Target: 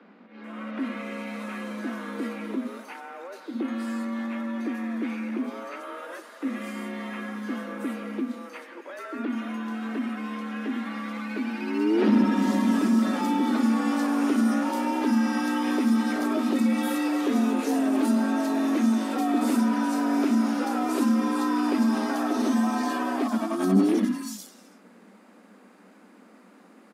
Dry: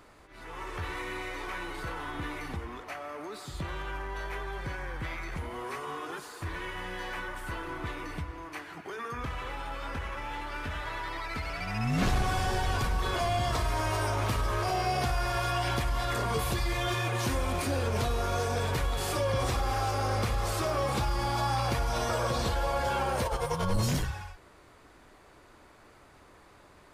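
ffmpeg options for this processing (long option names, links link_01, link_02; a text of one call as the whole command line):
ffmpeg -i in.wav -filter_complex "[0:a]bass=frequency=250:gain=9,treble=frequency=4000:gain=0,afreqshift=180,acrossover=split=4000[link_01][link_02];[link_02]adelay=440[link_03];[link_01][link_03]amix=inputs=2:normalize=0,volume=-1dB" out.wav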